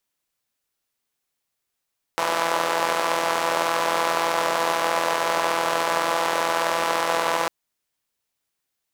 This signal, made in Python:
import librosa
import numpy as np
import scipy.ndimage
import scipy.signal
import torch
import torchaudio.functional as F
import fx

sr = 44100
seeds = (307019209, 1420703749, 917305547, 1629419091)

y = fx.engine_four(sr, seeds[0], length_s=5.3, rpm=5000, resonances_hz=(610.0, 920.0))